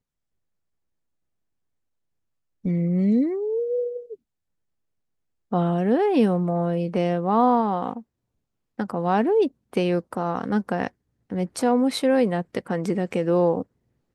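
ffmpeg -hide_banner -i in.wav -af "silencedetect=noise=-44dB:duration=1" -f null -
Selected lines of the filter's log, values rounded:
silence_start: 0.00
silence_end: 2.64 | silence_duration: 2.64
silence_start: 4.15
silence_end: 5.52 | silence_duration: 1.37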